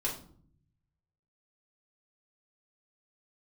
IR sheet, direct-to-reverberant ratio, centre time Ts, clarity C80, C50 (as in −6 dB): −5.0 dB, 25 ms, 12.5 dB, 8.0 dB